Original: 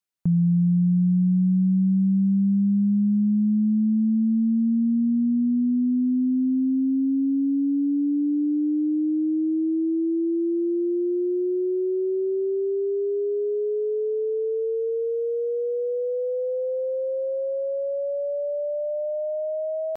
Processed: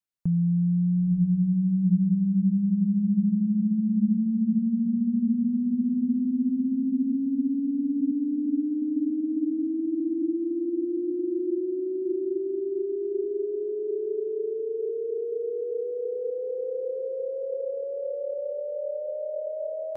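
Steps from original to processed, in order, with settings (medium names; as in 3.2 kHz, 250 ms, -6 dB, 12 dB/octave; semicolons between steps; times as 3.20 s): bass shelf 130 Hz +7 dB; on a send: echo that smears into a reverb 963 ms, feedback 45%, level -6 dB; on the sum: trim -6 dB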